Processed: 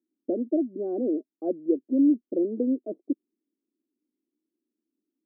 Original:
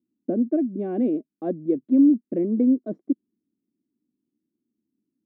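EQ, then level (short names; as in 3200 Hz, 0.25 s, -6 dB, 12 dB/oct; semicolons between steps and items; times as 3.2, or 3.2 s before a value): Butterworth band-pass 450 Hz, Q 1.2; 0.0 dB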